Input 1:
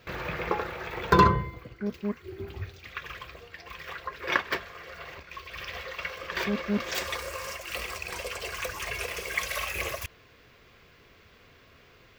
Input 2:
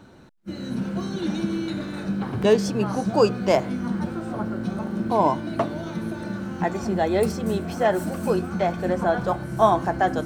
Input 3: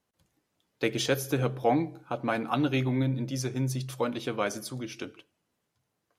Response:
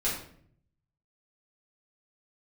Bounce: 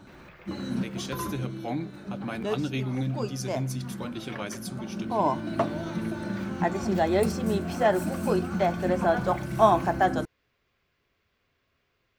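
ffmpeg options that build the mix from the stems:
-filter_complex "[0:a]volume=-17dB[a];[1:a]volume=-1.5dB[b];[2:a]equalizer=f=820:w=0.47:g=-9,dynaudnorm=f=340:g=7:m=9.5dB,volume=-9.5dB,asplit=2[c][d];[d]apad=whole_len=452131[e];[b][e]sidechaincompress=threshold=-39dB:ratio=8:attack=16:release=1080[f];[a][f][c]amix=inputs=3:normalize=0,bandreject=f=470:w=12"

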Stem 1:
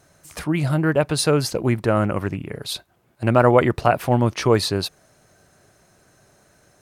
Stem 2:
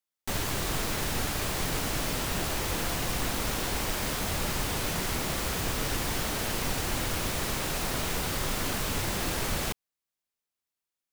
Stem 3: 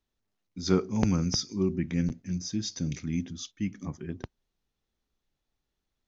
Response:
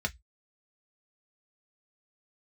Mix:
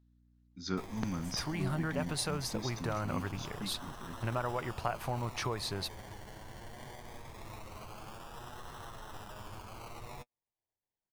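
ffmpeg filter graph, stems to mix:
-filter_complex "[0:a]acompressor=threshold=-21dB:ratio=6,adelay=1000,volume=-9dB[a];[1:a]alimiter=level_in=3dB:limit=-24dB:level=0:latency=1:release=112,volume=-3dB,acrusher=samples=27:mix=1:aa=0.000001:lfo=1:lforange=16.2:lforate=0.21,flanger=delay=8.2:depth=1.4:regen=33:speed=0.62:shape=sinusoidal,adelay=500,volume=-5.5dB[b];[2:a]aeval=exprs='val(0)+0.002*(sin(2*PI*60*n/s)+sin(2*PI*2*60*n/s)/2+sin(2*PI*3*60*n/s)/3+sin(2*PI*4*60*n/s)/4+sin(2*PI*5*60*n/s)/5)':c=same,equalizer=f=250:t=o:w=0.67:g=10,equalizer=f=1.6k:t=o:w=0.67:g=7,equalizer=f=4k:t=o:w=0.67:g=6,volume=-11.5dB[c];[a][b][c]amix=inputs=3:normalize=0,equalizer=f=250:t=o:w=1:g=-6,equalizer=f=500:t=o:w=1:g=-4,equalizer=f=1k:t=o:w=1:g=4"

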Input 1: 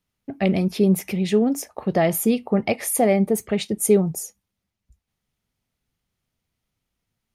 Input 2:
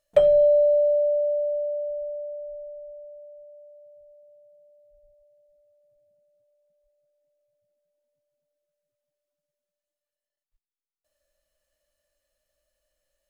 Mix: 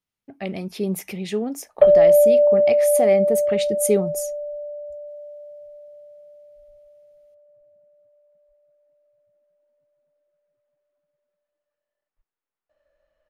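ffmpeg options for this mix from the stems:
-filter_complex "[0:a]volume=-7.5dB[a];[1:a]lowpass=1.6k,adelay=1650,volume=3dB[b];[a][b]amix=inputs=2:normalize=0,lowshelf=f=260:g=-7.5,dynaudnorm=f=340:g=5:m=8dB"

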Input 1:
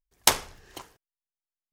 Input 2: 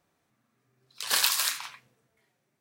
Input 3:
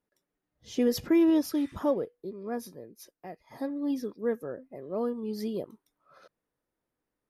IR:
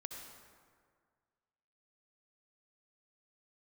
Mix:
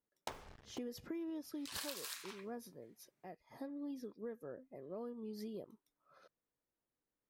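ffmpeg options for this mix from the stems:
-filter_complex "[0:a]lowpass=f=1.2k:p=1,alimiter=limit=-14.5dB:level=0:latency=1:release=351,acrusher=bits=7:mix=0:aa=0.5,volume=-4.5dB[a];[1:a]adelay=650,volume=-8.5dB[b];[2:a]volume=-9dB,asplit=2[c][d];[d]apad=whole_len=75903[e];[a][e]sidechaincompress=threshold=-51dB:ratio=8:attack=30:release=390[f];[f][b][c]amix=inputs=3:normalize=0,acompressor=threshold=-42dB:ratio=6"

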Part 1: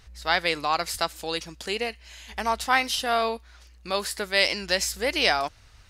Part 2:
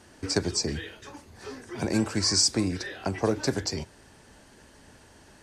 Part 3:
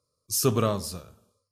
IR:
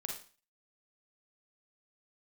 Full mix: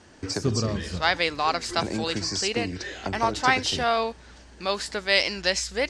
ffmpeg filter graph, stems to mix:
-filter_complex "[0:a]adelay=750,volume=0.5dB[a];[1:a]acompressor=threshold=-29dB:ratio=3,volume=1.5dB,asplit=2[b][c];[2:a]lowshelf=f=390:g=10,volume=-0.5dB[d];[c]apad=whole_len=66901[e];[d][e]sidechaincompress=threshold=-35dB:ratio=8:attack=22:release=335[f];[a][b][f]amix=inputs=3:normalize=0,lowpass=f=7.7k:w=0.5412,lowpass=f=7.7k:w=1.3066"

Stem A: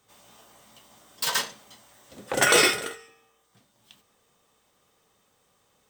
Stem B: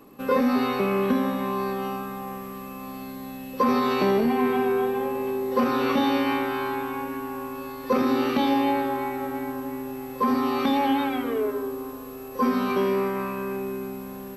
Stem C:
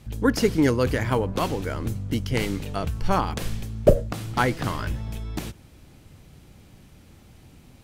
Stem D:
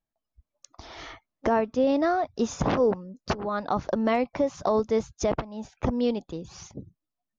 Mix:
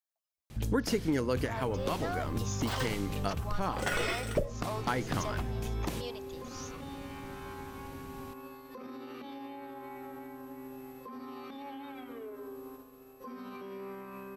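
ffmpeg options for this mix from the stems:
-filter_complex "[0:a]acrossover=split=3600[a][b];[b]acompressor=threshold=-31dB:ratio=4:attack=1:release=60[c];[a][c]amix=inputs=2:normalize=0,adelay=1450,volume=-8dB[d];[1:a]agate=range=-33dB:threshold=-29dB:ratio=3:detection=peak,acompressor=threshold=-28dB:ratio=6,alimiter=level_in=7dB:limit=-24dB:level=0:latency=1:release=303,volume=-7dB,adelay=850,volume=-5dB[e];[2:a]bandreject=f=60:t=h:w=6,bandreject=f=120:t=h:w=6,adelay=500,volume=2dB[f];[3:a]highpass=790,highshelf=f=4.7k:g=8.5,asoftclip=type=tanh:threshold=-22.5dB,volume=-6dB,asplit=2[g][h];[h]apad=whole_len=367516[i];[f][i]sidechaincompress=threshold=-40dB:ratio=8:attack=12:release=1090[j];[d][e][j][g]amix=inputs=4:normalize=0,acompressor=threshold=-28dB:ratio=4"

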